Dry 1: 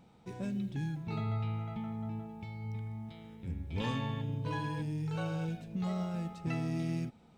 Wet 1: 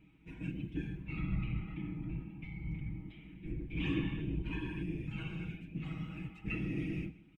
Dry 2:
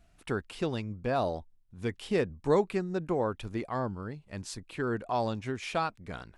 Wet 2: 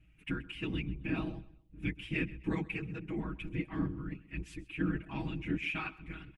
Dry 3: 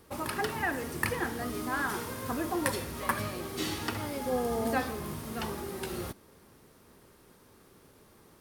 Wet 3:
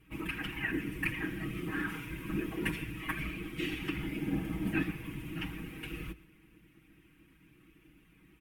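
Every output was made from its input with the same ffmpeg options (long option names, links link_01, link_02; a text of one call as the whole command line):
ffmpeg -i in.wav -filter_complex "[0:a]firequalizer=gain_entry='entry(110,0);entry(180,-6);entry(270,10);entry(430,-23);entry(810,-13);entry(2500,10);entry(4200,-15);entry(13000,-8)':delay=0.05:min_phase=1,afftfilt=real='hypot(re,im)*cos(2*PI*random(0))':imag='hypot(re,im)*sin(2*PI*random(1))':win_size=512:overlap=0.75,equalizer=frequency=61:width=2:gain=14.5,aecho=1:1:6.3:0.99,asplit=2[link_01][link_02];[link_02]aecho=0:1:129|258|387:0.106|0.0339|0.0108[link_03];[link_01][link_03]amix=inputs=2:normalize=0" out.wav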